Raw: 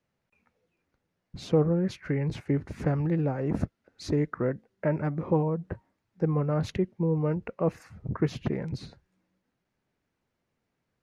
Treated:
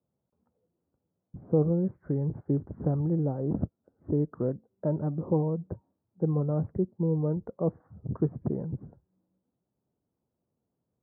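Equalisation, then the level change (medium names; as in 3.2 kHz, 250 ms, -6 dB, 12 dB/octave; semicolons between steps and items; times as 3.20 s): Gaussian low-pass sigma 9.4 samples; high-pass 67 Hz; 0.0 dB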